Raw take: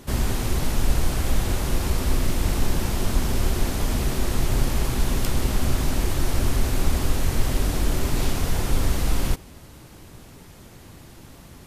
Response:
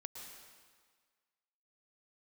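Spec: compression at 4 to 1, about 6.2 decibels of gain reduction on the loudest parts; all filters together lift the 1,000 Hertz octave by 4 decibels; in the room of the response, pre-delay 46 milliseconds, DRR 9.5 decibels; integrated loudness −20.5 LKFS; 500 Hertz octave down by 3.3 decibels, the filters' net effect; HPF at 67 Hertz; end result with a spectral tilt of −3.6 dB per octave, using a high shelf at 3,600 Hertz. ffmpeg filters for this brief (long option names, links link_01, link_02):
-filter_complex "[0:a]highpass=67,equalizer=frequency=500:width_type=o:gain=-6.5,equalizer=frequency=1000:width_type=o:gain=6.5,highshelf=frequency=3600:gain=4.5,acompressor=threshold=-29dB:ratio=4,asplit=2[link_01][link_02];[1:a]atrim=start_sample=2205,adelay=46[link_03];[link_02][link_03]afir=irnorm=-1:irlink=0,volume=-6dB[link_04];[link_01][link_04]amix=inputs=2:normalize=0,volume=11dB"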